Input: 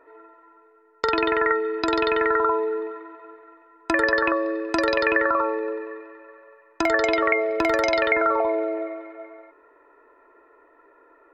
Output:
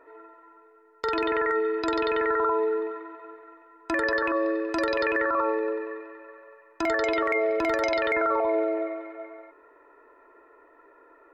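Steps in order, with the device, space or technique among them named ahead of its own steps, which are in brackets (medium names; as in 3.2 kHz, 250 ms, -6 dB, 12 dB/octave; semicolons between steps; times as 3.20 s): clipper into limiter (hard clipper -9 dBFS, distortion -42 dB; peak limiter -16.5 dBFS, peak gain reduction 7.5 dB)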